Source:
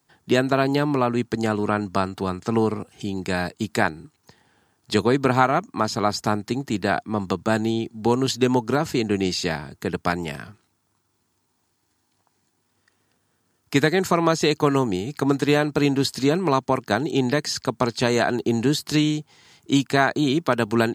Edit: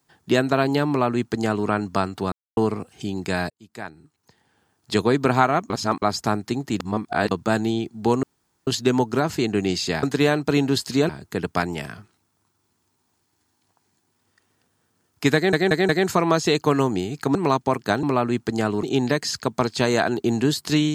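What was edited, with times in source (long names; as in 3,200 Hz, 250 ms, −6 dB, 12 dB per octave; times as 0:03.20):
0:00.88–0:01.68: duplicate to 0:17.05
0:02.32–0:02.57: silence
0:03.50–0:05.07: fade in
0:05.70–0:06.02: reverse
0:06.80–0:07.31: reverse
0:08.23: splice in room tone 0.44 s
0:13.85: stutter 0.18 s, 4 plays
0:15.31–0:16.37: move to 0:09.59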